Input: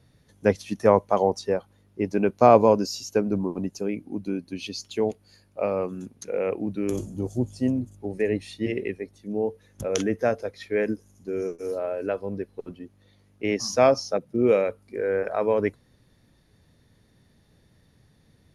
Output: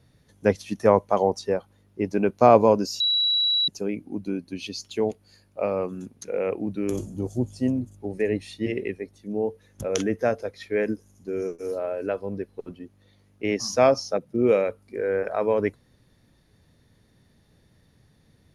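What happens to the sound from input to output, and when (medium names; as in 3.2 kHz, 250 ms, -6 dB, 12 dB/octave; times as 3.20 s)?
3.00–3.68 s: bleep 3.91 kHz -19 dBFS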